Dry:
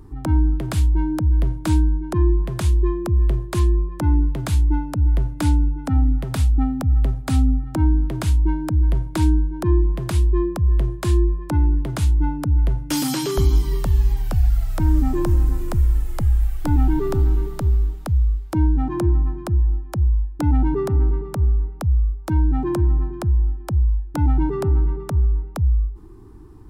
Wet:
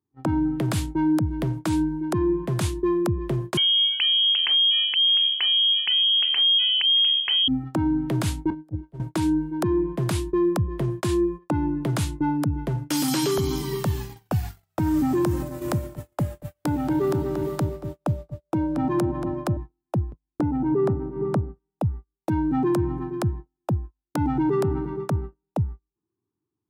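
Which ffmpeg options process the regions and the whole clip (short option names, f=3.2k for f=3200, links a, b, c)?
-filter_complex "[0:a]asettb=1/sr,asplit=3[a][b][c];[a]atrim=end=3.574[d];[b]atrim=start=3.57:end=7.48,asetpts=PTS-STARTPTS,afade=t=in:d=0.004:c=qsin,afade=t=out:st=3.906:d=0.004:c=qsin,adynamicsmooth=sensitivity=3:basefreq=2.2k,lowpass=f=2.8k:t=q:w=0.5098,lowpass=f=2.8k:t=q:w=0.6013,lowpass=f=2.8k:t=q:w=0.9,lowpass=f=2.8k:t=q:w=2.563,afreqshift=-3300[e];[c]atrim=start=7.476[f];[d][e]acrossfade=d=0.004:c1=hsin:c2=qsin[g];[g][f]acrossfade=d=0.004:c1=qsin:c2=hsin,asettb=1/sr,asplit=3[h][i][j];[h]atrim=end=8.504[k];[i]atrim=start=8.5:end=9,asetpts=PTS-STARTPTS,afade=t=in:d=0.004:c=qsin,afade=t=out:st=0.496:d=0.004:c=qsin,agate=range=-10dB:threshold=-20dB:ratio=16:release=100:detection=peak,acrossover=split=290|710[l][m][n];[l]acompressor=threshold=-23dB:ratio=4[o];[m]acompressor=threshold=-42dB:ratio=4[p];[n]acompressor=threshold=-53dB:ratio=4[q];[o][p][q]amix=inputs=3:normalize=0[r];[j]atrim=start=8.996[s];[k][r]acrossfade=d=0.004:c1=hsin:c2=qsin[t];[t][s]acrossfade=d=0.004:c1=qsin:c2=hsin,asettb=1/sr,asplit=3[u][v][w];[u]atrim=end=15.424[x];[v]atrim=start=15.42:end=19.57,asetpts=PTS-STARTPTS,afade=t=in:d=0.004:c=qsin,afade=t=out:st=4.146:d=0.004:c=qsin,acompressor=threshold=-18dB:ratio=3:attack=3.2:release=140:knee=1:detection=peak,aeval=exprs='val(0)+0.01*sin(2*PI*590*n/s)':c=same,asplit=2[y][z];[z]adelay=231,lowpass=f=3.5k:p=1,volume=-10dB,asplit=2[aa][ab];[ab]adelay=231,lowpass=f=3.5k:p=1,volume=0.45,asplit=2[ac][ad];[ad]adelay=231,lowpass=f=3.5k:p=1,volume=0.45,asplit=2[ae][af];[af]adelay=231,lowpass=f=3.5k:p=1,volume=0.45,asplit=2[ag][ah];[ah]adelay=231,lowpass=f=3.5k:p=1,volume=0.45[ai];[y][aa][ac][ae][ag][ai]amix=inputs=6:normalize=0,atrim=end_sample=183015[aj];[w]atrim=start=19.566[ak];[x][aj]acrossfade=d=0.004:c1=hsin:c2=qsin[al];[al][ak]acrossfade=d=0.004:c1=qsin:c2=hsin,asettb=1/sr,asplit=3[am][an][ao];[am]atrim=end=20.124[ap];[an]atrim=start=20.12:end=21.56,asetpts=PTS-STARTPTS,afade=t=in:d=0.004:c=qsin,afade=t=out:st=1.436:d=0.004:c=qsin,lowpass=f=3.4k:p=1,tiltshelf=f=1.4k:g=5.5,acompressor=threshold=-18dB:ratio=5:attack=3.2:release=140:knee=1:detection=peak[aq];[ao]atrim=start=21.556[ar];[ap][aq]acrossfade=d=0.004:c1=hsin:c2=qsin[as];[as][ar]acrossfade=d=0.004:c1=qsin:c2=hsin,highpass=f=110:w=0.5412,highpass=f=110:w=1.3066,agate=range=-41dB:threshold=-34dB:ratio=16:detection=peak,alimiter=limit=-19dB:level=0:latency=1:release=52,volume=4dB"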